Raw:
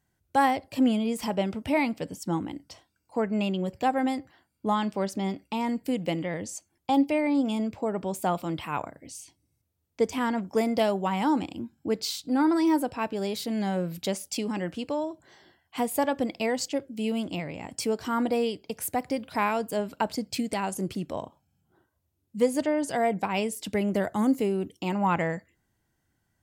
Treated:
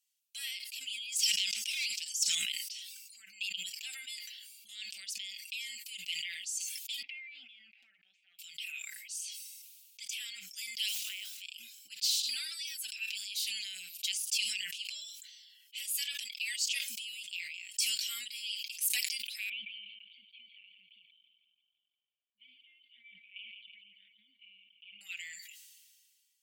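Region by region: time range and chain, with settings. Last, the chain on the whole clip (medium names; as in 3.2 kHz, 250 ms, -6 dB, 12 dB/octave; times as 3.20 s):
1.12–2.35 s: peaking EQ 6 kHz +12.5 dB 1.2 oct + hard clipper -22 dBFS
7.02–8.39 s: cabinet simulation 300–2000 Hz, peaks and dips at 310 Hz +6 dB, 530 Hz -8 dB, 1.1 kHz -9 dB, 1.5 kHz -3 dB + compression 4:1, threshold -35 dBFS
10.88–11.43 s: block-companded coder 5-bit + high-pass 250 Hz + treble shelf 2 kHz -5 dB
15.88–17.35 s: high-pass 150 Hz + compression 1.5:1, threshold -31 dBFS
19.49–25.01 s: cascade formant filter i + feedback delay 168 ms, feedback 53%, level -16 dB
whole clip: elliptic high-pass 2.6 kHz, stop band 60 dB; comb 5.2 ms, depth 76%; decay stretcher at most 30 dB/s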